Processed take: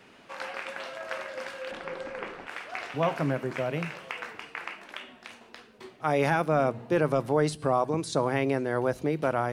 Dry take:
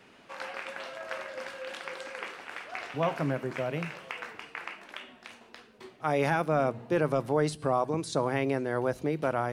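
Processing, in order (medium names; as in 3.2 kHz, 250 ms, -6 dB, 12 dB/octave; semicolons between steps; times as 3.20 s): 1.71–2.47 s: tilt EQ -3.5 dB/octave; trim +2 dB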